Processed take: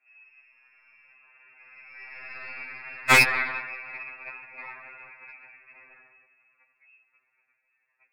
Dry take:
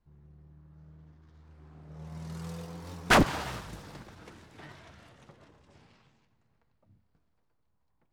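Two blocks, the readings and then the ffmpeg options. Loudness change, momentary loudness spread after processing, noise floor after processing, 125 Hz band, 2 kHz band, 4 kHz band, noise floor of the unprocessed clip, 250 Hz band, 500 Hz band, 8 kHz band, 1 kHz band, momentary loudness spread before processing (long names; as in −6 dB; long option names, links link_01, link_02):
+5.5 dB, 24 LU, −76 dBFS, −6.0 dB, +9.5 dB, +4.5 dB, −74 dBFS, −8.0 dB, −2.5 dB, +6.0 dB, +2.0 dB, 24 LU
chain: -af "highpass=frequency=150:width=0.5412,highpass=frequency=150:width=1.3066,lowpass=frequency=2400:width_type=q:width=0.5098,lowpass=frequency=2400:width_type=q:width=0.6013,lowpass=frequency=2400:width_type=q:width=0.9,lowpass=frequency=2400:width_type=q:width=2.563,afreqshift=-2800,aeval=exprs='0.335*(cos(1*acos(clip(val(0)/0.335,-1,1)))-cos(1*PI/2))+0.0473*(cos(2*acos(clip(val(0)/0.335,-1,1)))-cos(2*PI/2))+0.0668*(cos(4*acos(clip(val(0)/0.335,-1,1)))-cos(4*PI/2))+0.15*(cos(6*acos(clip(val(0)/0.335,-1,1)))-cos(6*PI/2))+0.0944*(cos(8*acos(clip(val(0)/0.335,-1,1)))-cos(8*PI/2))':channel_layout=same,alimiter=level_in=12dB:limit=-1dB:release=50:level=0:latency=1,afftfilt=real='re*2.45*eq(mod(b,6),0)':imag='im*2.45*eq(mod(b,6),0)':win_size=2048:overlap=0.75"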